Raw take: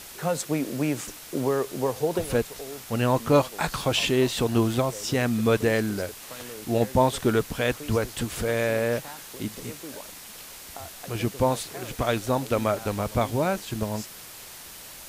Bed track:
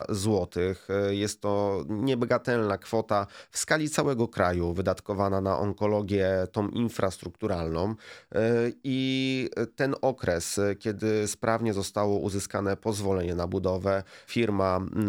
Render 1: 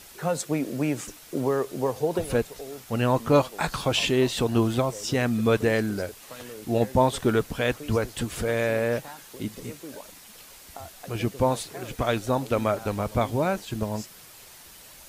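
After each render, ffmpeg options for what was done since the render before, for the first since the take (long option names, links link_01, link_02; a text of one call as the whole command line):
ffmpeg -i in.wav -af "afftdn=noise_reduction=6:noise_floor=-43" out.wav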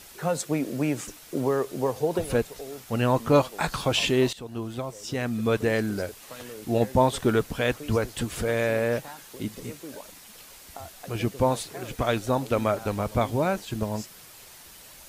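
ffmpeg -i in.wav -filter_complex "[0:a]asplit=2[link_01][link_02];[link_01]atrim=end=4.33,asetpts=PTS-STARTPTS,afade=type=out:start_time=4.326:duration=0.004:curve=hsin:silence=0.141254[link_03];[link_02]atrim=start=4.33,asetpts=PTS-STARTPTS,afade=type=in:duration=1.67:silence=0.141254[link_04];[link_03][link_04]concat=n=2:v=0:a=1" out.wav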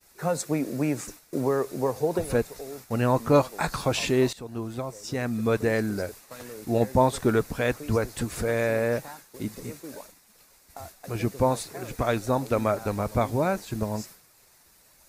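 ffmpeg -i in.wav -af "equalizer=frequency=3100:width=4:gain=-10,agate=range=-33dB:threshold=-40dB:ratio=3:detection=peak" out.wav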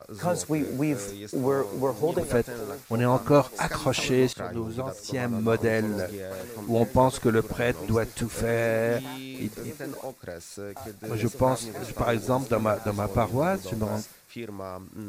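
ffmpeg -i in.wav -i bed.wav -filter_complex "[1:a]volume=-11.5dB[link_01];[0:a][link_01]amix=inputs=2:normalize=0" out.wav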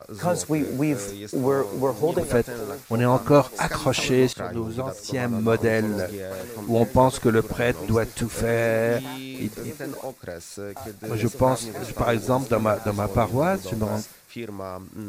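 ffmpeg -i in.wav -af "volume=3dB" out.wav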